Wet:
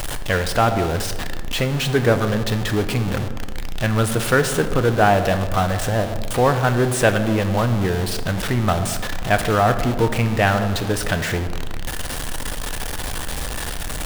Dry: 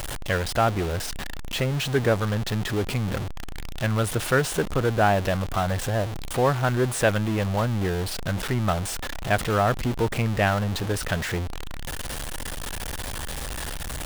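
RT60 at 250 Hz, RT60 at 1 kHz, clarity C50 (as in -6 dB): 2.0 s, 1.3 s, 10.5 dB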